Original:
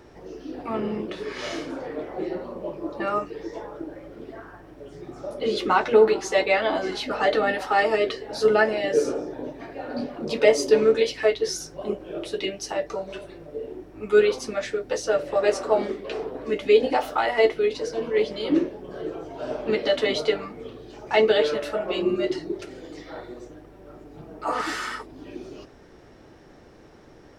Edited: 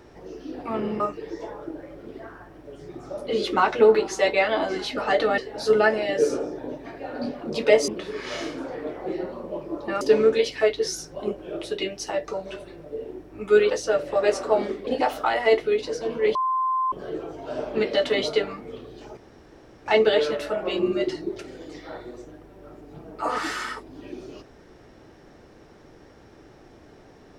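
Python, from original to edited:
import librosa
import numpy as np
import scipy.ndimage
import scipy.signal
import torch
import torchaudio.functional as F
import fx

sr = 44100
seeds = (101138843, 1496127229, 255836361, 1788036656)

y = fx.edit(x, sr, fx.move(start_s=1.0, length_s=2.13, to_s=10.63),
    fx.cut(start_s=7.51, length_s=0.62),
    fx.cut(start_s=14.32, length_s=0.58),
    fx.cut(start_s=16.07, length_s=0.72),
    fx.bleep(start_s=18.27, length_s=0.57, hz=1040.0, db=-20.5),
    fx.insert_room_tone(at_s=21.09, length_s=0.69), tone=tone)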